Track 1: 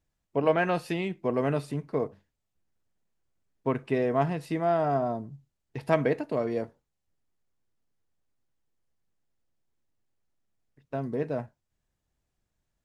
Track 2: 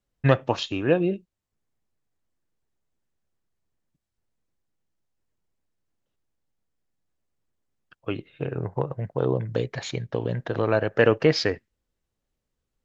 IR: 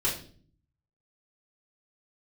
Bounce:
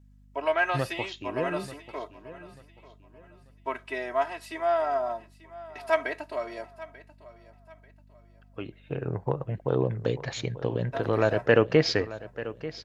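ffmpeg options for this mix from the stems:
-filter_complex "[0:a]highpass=790,aecho=1:1:3.1:0.85,aeval=exprs='val(0)+0.00178*(sin(2*PI*50*n/s)+sin(2*PI*2*50*n/s)/2+sin(2*PI*3*50*n/s)/3+sin(2*PI*4*50*n/s)/4+sin(2*PI*5*50*n/s)/5)':c=same,volume=1.06,asplit=2[s0][s1];[s1]volume=0.126[s2];[1:a]adelay=500,volume=0.841,afade=t=in:st=8.48:d=0.61:silence=0.334965,asplit=2[s3][s4];[s4]volume=0.178[s5];[s2][s5]amix=inputs=2:normalize=0,aecho=0:1:889|1778|2667|3556|4445:1|0.32|0.102|0.0328|0.0105[s6];[s0][s3][s6]amix=inputs=3:normalize=0"

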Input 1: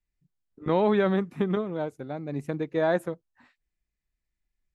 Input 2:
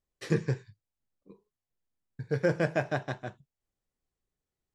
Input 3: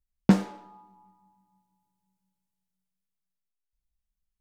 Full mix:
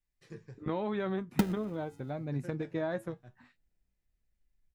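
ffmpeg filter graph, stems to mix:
-filter_complex "[0:a]volume=1.19,asplit=2[s0][s1];[1:a]volume=0.158[s2];[2:a]highpass=260,acrusher=samples=39:mix=1:aa=0.000001,adelay=1100,volume=0.708[s3];[s1]apad=whole_len=242826[s4];[s3][s4]sidechaincompress=threshold=0.0251:ratio=8:attack=12:release=155[s5];[s0][s2]amix=inputs=2:normalize=0,flanger=delay=7.8:depth=1.8:regen=64:speed=0.88:shape=triangular,acompressor=threshold=0.0224:ratio=2.5,volume=1[s6];[s5][s6]amix=inputs=2:normalize=0,asubboost=boost=2.5:cutoff=230"

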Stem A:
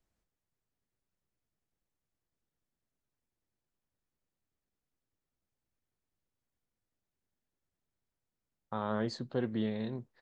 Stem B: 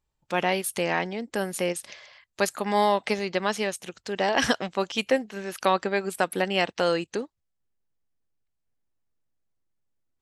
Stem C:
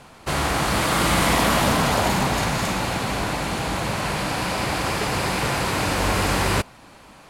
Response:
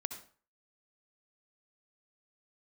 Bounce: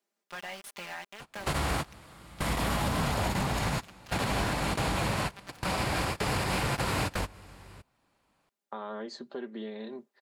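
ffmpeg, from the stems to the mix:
-filter_complex "[0:a]highpass=f=260:w=0.5412,highpass=f=260:w=1.3066,volume=1.26[s0];[1:a]equalizer=f=400:t=o:w=0.68:g=-13.5,acrusher=bits=4:mix=0:aa=0.000001,asplit=2[s1][s2];[s2]highpass=f=720:p=1,volume=4.47,asoftclip=type=tanh:threshold=0.335[s3];[s1][s3]amix=inputs=2:normalize=0,lowpass=f=2500:p=1,volume=0.501,volume=0.2,asplit=2[s4][s5];[2:a]bandreject=f=6100:w=19,acrossover=split=150[s6][s7];[s7]acompressor=threshold=0.0501:ratio=4[s8];[s6][s8]amix=inputs=2:normalize=0,adelay=1200,volume=1.06[s9];[s5]apad=whole_len=374469[s10];[s9][s10]sidechaingate=range=0.0501:threshold=0.00355:ratio=16:detection=peak[s11];[s0][s4]amix=inputs=2:normalize=0,aecho=1:1:5:0.64,acompressor=threshold=0.0126:ratio=2.5,volume=1[s12];[s11][s12]amix=inputs=2:normalize=0,alimiter=limit=0.106:level=0:latency=1:release=133"

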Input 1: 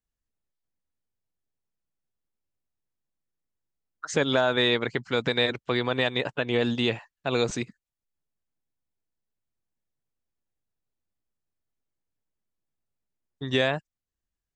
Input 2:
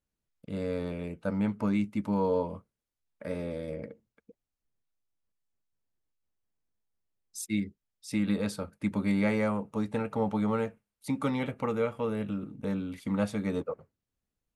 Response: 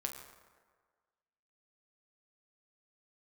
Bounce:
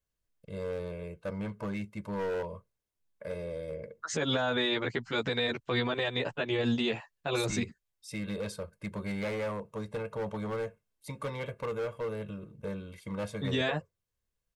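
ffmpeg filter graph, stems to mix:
-filter_complex "[0:a]asplit=2[s0][s1];[s1]adelay=11.4,afreqshift=-2.3[s2];[s0][s2]amix=inputs=2:normalize=1,volume=1.19[s3];[1:a]aecho=1:1:1.9:0.8,asoftclip=type=hard:threshold=0.0562,volume=0.562[s4];[s3][s4]amix=inputs=2:normalize=0,alimiter=limit=0.1:level=0:latency=1:release=56"

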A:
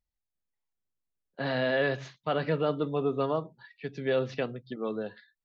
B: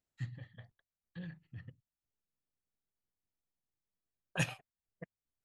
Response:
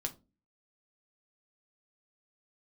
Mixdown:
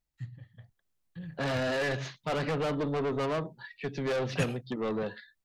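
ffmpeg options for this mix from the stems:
-filter_complex "[0:a]asoftclip=type=tanh:threshold=0.02,volume=1.19[s0];[1:a]lowshelf=f=180:g=9.5,volume=0.473[s1];[s0][s1]amix=inputs=2:normalize=0,dynaudnorm=f=450:g=3:m=1.78"

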